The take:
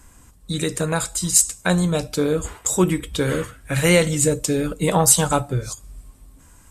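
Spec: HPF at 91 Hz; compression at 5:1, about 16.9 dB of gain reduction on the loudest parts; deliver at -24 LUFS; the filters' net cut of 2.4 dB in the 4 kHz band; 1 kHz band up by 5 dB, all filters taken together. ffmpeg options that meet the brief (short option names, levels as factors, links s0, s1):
-af "highpass=91,equalizer=f=1000:t=o:g=6.5,equalizer=f=4000:t=o:g=-3.5,acompressor=threshold=0.0316:ratio=5,volume=2.66"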